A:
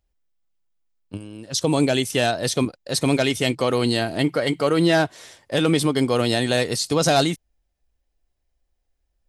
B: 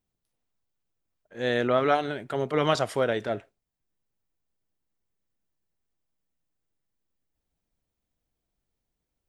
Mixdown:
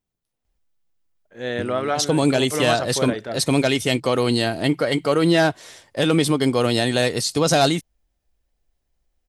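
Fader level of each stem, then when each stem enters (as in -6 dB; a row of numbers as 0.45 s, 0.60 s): +1.0 dB, -0.5 dB; 0.45 s, 0.00 s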